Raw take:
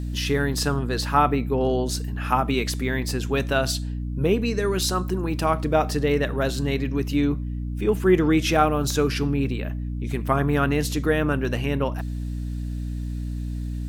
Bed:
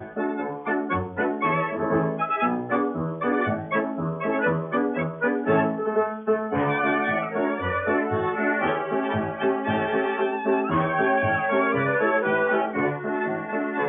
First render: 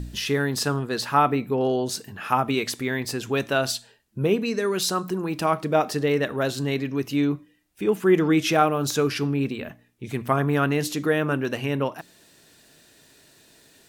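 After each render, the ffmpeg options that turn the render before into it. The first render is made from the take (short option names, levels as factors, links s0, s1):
-af "bandreject=f=60:t=h:w=4,bandreject=f=120:t=h:w=4,bandreject=f=180:t=h:w=4,bandreject=f=240:t=h:w=4,bandreject=f=300:t=h:w=4"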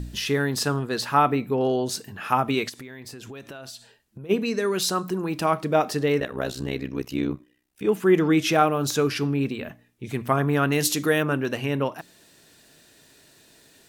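-filter_complex "[0:a]asplit=3[s0][s1][s2];[s0]afade=t=out:st=2.68:d=0.02[s3];[s1]acompressor=threshold=0.0158:ratio=12:attack=3.2:release=140:knee=1:detection=peak,afade=t=in:st=2.68:d=0.02,afade=t=out:st=4.29:d=0.02[s4];[s2]afade=t=in:st=4.29:d=0.02[s5];[s3][s4][s5]amix=inputs=3:normalize=0,asettb=1/sr,asplit=3[s6][s7][s8];[s6]atrim=end=6.204[s9];[s7]atrim=start=6.2:end=7.85,asetpts=PTS-STARTPTS,afade=t=in:d=0.004:c=qsin,afade=t=out:st=1.646:d=0.004:c=qsin,tremolo=f=64:d=0.919[s10];[s8]atrim=start=7.846[s11];[s9][s10]acrossfade=d=0.004:c1=hsin:c2=qsin[s12];[s12][s11]acrossfade=d=0.004:c1=qsin:c2=hsin,asettb=1/sr,asplit=3[s13][s14][s15];[s13]atrim=end=10.724[s16];[s14]atrim=start=10.72:end=11.23,asetpts=PTS-STARTPTS,afade=t=in:d=0.004:c=qsin,afade=t=out:st=0.506:d=0.004:c=qsin,highshelf=f=3400:g=10[s17];[s15]atrim=start=11.226[s18];[s16][s17]acrossfade=d=0.004:c1=hsin:c2=qsin[s19];[s19][s18]acrossfade=d=0.004:c1=qsin:c2=hsin"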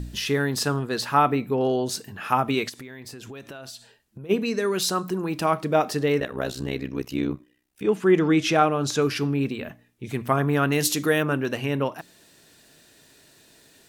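-filter_complex "[0:a]asettb=1/sr,asplit=3[s0][s1][s2];[s0]atrim=end=7.834[s3];[s1]atrim=start=7.83:end=9.02,asetpts=PTS-STARTPTS,afade=t=in:d=0.004:c=qsin,afade=t=out:st=1.186:d=0.004:c=qsin,lowpass=8400[s4];[s2]atrim=start=9.016[s5];[s3][s4]acrossfade=d=0.004:c1=hsin:c2=qsin[s6];[s6][s5]acrossfade=d=0.004:c1=qsin:c2=hsin"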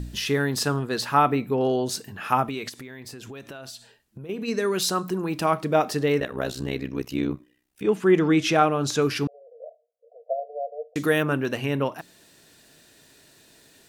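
-filter_complex "[0:a]asplit=3[s0][s1][s2];[s0]afade=t=out:st=2.46:d=0.02[s3];[s1]acompressor=threshold=0.0398:ratio=4:attack=3.2:release=140:knee=1:detection=peak,afade=t=in:st=2.46:d=0.02,afade=t=out:st=4.47:d=0.02[s4];[s2]afade=t=in:st=4.47:d=0.02[s5];[s3][s4][s5]amix=inputs=3:normalize=0,asettb=1/sr,asplit=3[s6][s7][s8];[s6]atrim=end=9.274[s9];[s7]atrim=start=9.27:end=10.96,asetpts=PTS-STARTPTS,afade=t=in:d=0.004:c=qsin,afade=t=out:st=1.686:d=0.004:c=qsin,asuperpass=centerf=580:order=20:qfactor=2.1[s10];[s8]atrim=start=10.956[s11];[s9][s10]acrossfade=d=0.004:c1=hsin:c2=qsin[s12];[s12][s11]acrossfade=d=0.004:c1=qsin:c2=hsin"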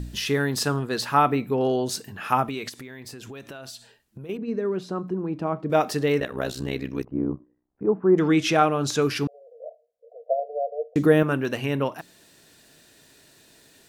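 -filter_complex "[0:a]asettb=1/sr,asplit=3[s0][s1][s2];[s0]atrim=end=4.374[s3];[s1]atrim=start=4.37:end=5.7,asetpts=PTS-STARTPTS,afade=t=in:d=0.004:c=qsin,afade=t=out:st=1.326:d=0.004:c=qsin,bandpass=f=230:t=q:w=0.51[s4];[s2]atrim=start=5.696[s5];[s3][s4]acrossfade=d=0.004:c1=hsin:c2=qsin[s6];[s6][s5]acrossfade=d=0.004:c1=qsin:c2=hsin,asplit=3[s7][s8][s9];[s7]afade=t=out:st=7.03:d=0.02[s10];[s8]lowpass=f=1100:w=0.5412,lowpass=f=1100:w=1.3066,afade=t=in:st=7.03:d=0.02,afade=t=out:st=8.17:d=0.02[s11];[s9]afade=t=in:st=8.17:d=0.02[s12];[s10][s11][s12]amix=inputs=3:normalize=0,asettb=1/sr,asplit=3[s13][s14][s15];[s13]atrim=end=9.654[s16];[s14]atrim=start=9.65:end=11.23,asetpts=PTS-STARTPTS,afade=t=in:d=0.004:c=qsin,afade=t=out:st=1.576:d=0.004:c=qsin,tiltshelf=f=1100:g=7.5[s17];[s15]atrim=start=11.226[s18];[s16][s17]acrossfade=d=0.004:c1=hsin:c2=qsin[s19];[s19][s18]acrossfade=d=0.004:c1=qsin:c2=hsin"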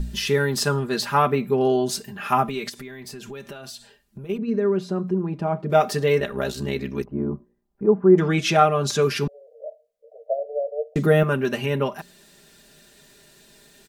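-af "lowshelf=f=89:g=8,aecho=1:1:5:0.75"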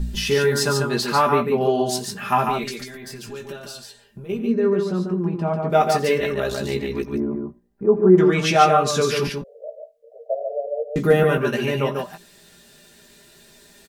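-filter_complex "[0:a]asplit=2[s0][s1];[s1]adelay=17,volume=0.501[s2];[s0][s2]amix=inputs=2:normalize=0,aecho=1:1:87|144:0.133|0.596"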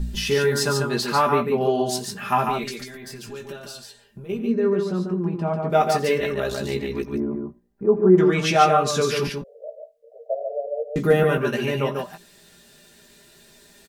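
-af "volume=0.841"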